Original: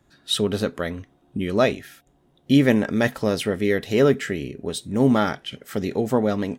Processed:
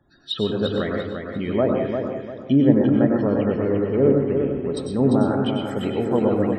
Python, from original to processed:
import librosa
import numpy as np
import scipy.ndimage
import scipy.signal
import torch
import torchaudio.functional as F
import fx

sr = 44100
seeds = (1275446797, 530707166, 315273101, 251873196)

y = fx.median_filter(x, sr, points=25, at=(3.28, 4.77))
y = fx.env_lowpass_down(y, sr, base_hz=780.0, full_db=-15.0)
y = fx.spec_topn(y, sr, count=64)
y = fx.echo_feedback(y, sr, ms=346, feedback_pct=32, wet_db=-6)
y = fx.rev_plate(y, sr, seeds[0], rt60_s=0.53, hf_ratio=0.65, predelay_ms=85, drr_db=1.5)
y = F.gain(torch.from_numpy(y), -1.0).numpy()